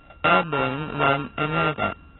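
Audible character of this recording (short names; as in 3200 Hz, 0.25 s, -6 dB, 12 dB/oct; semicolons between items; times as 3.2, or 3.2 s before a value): a buzz of ramps at a fixed pitch in blocks of 32 samples; AAC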